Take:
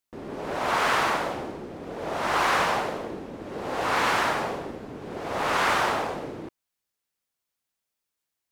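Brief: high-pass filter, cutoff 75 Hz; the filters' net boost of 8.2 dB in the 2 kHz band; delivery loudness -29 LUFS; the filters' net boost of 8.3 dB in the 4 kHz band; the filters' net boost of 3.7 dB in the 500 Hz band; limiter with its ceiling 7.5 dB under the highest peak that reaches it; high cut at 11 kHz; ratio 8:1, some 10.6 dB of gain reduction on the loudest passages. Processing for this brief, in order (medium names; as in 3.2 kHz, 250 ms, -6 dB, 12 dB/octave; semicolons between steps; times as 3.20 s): high-pass 75 Hz; low-pass 11 kHz; peaking EQ 500 Hz +4 dB; peaking EQ 2 kHz +8.5 dB; peaking EQ 4 kHz +7.5 dB; compression 8:1, threshold -25 dBFS; trim +3 dB; peak limiter -20 dBFS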